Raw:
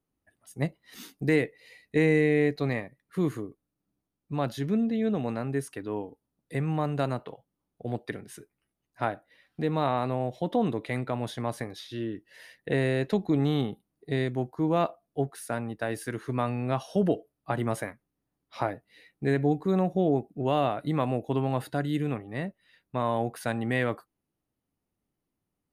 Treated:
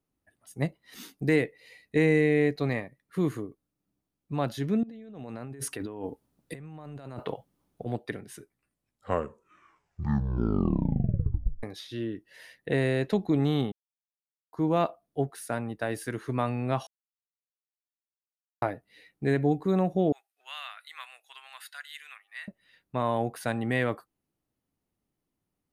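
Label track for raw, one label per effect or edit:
4.830000	7.860000	negative-ratio compressor -40 dBFS
8.370000	8.370000	tape stop 3.26 s
13.720000	14.530000	mute
16.870000	18.620000	mute
20.120000	22.480000	HPF 1500 Hz 24 dB/oct

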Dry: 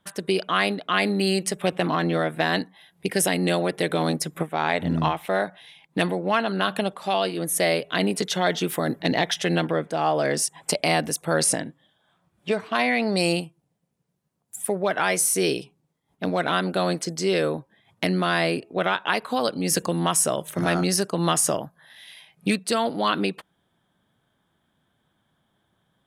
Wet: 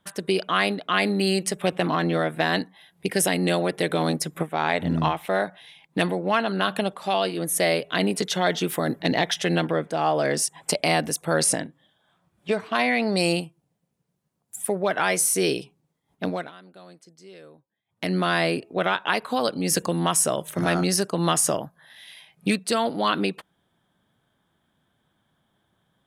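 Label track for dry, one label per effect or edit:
11.660000	12.490000	compressor 2:1, threshold -44 dBFS
16.240000	18.160000	dip -23.5 dB, fades 0.27 s

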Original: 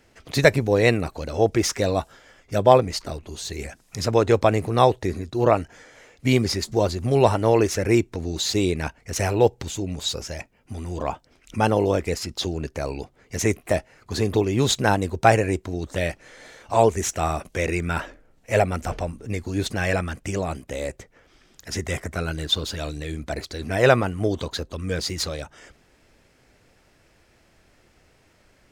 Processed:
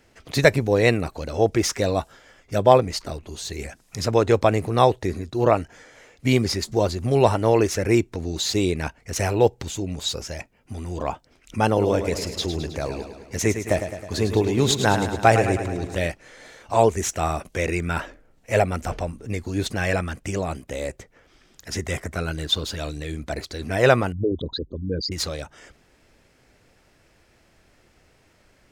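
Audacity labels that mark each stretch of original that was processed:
11.670000	16.070000	feedback echo 0.106 s, feedback 59%, level -9 dB
24.120000	25.120000	formant sharpening exponent 3

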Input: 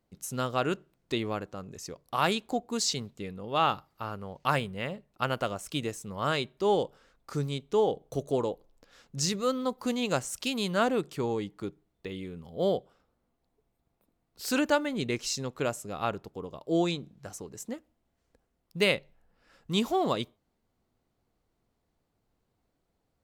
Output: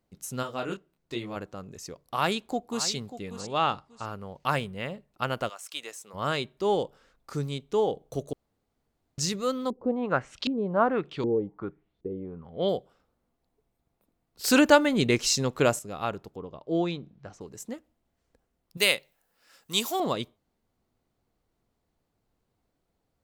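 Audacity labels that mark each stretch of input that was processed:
0.420000	1.350000	detuned doubles each way 25 cents -> 11 cents
2.050000	2.870000	echo throw 0.59 s, feedback 25%, level -12.5 dB
3.400000	4.050000	brick-wall FIR low-pass 10000 Hz
5.480000	6.130000	HPF 1200 Hz -> 540 Hz
8.330000	9.180000	room tone
9.700000	12.690000	LFO low-pass saw up 1.3 Hz 310–4700 Hz
14.440000	15.790000	gain +7.5 dB
16.360000	17.410000	air absorption 170 m
18.770000	20.000000	RIAA curve recording

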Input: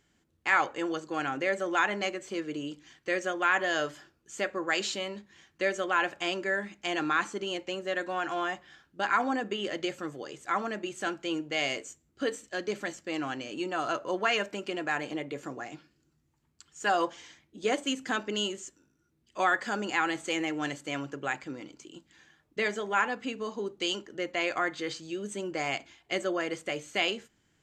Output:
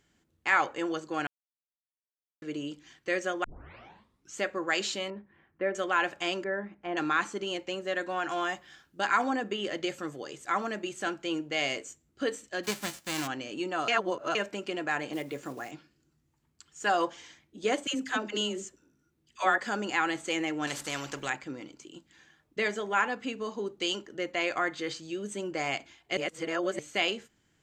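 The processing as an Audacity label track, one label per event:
1.270000	2.420000	mute
3.440000	3.440000	tape start 0.93 s
5.100000	5.750000	Bessel low-pass 1400 Hz, order 4
6.440000	6.970000	LPF 1300 Hz
8.290000	9.300000	high shelf 5200 Hz +8 dB
9.870000	10.940000	high shelf 4900 Hz +4 dB
12.630000	13.260000	spectral whitening exponent 0.3
13.880000	14.350000	reverse
15.130000	15.720000	block floating point 5-bit
17.870000	19.580000	dispersion lows, late by 76 ms, half as late at 620 Hz
20.670000	21.300000	spectral compressor 2:1
26.170000	26.790000	reverse

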